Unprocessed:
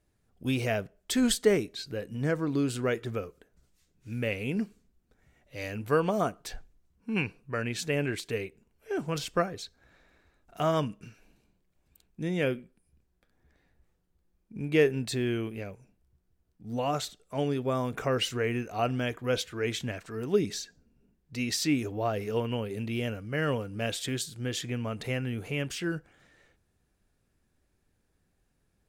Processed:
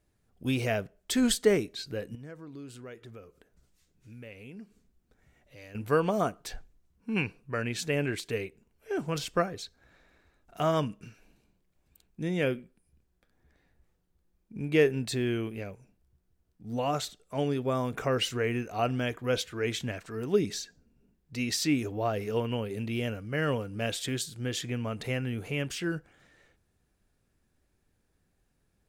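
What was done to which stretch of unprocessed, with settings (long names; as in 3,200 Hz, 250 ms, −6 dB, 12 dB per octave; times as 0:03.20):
0:02.15–0:05.75: downward compressor 2 to 1, threshold −55 dBFS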